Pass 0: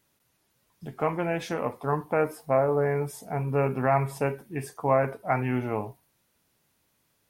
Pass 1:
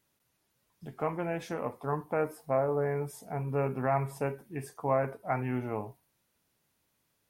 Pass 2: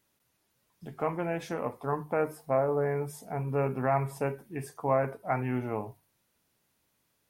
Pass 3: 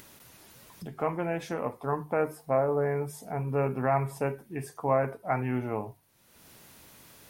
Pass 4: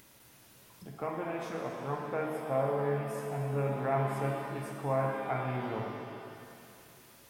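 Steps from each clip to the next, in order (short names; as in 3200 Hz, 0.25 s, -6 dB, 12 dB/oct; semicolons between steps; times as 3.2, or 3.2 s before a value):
dynamic EQ 3400 Hz, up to -4 dB, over -46 dBFS, Q 0.82; gain -5 dB
notches 50/100/150 Hz; gain +1.5 dB
upward compressor, threshold -37 dBFS; gain +1 dB
shimmer reverb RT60 2.5 s, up +7 st, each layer -8 dB, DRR 0 dB; gain -7.5 dB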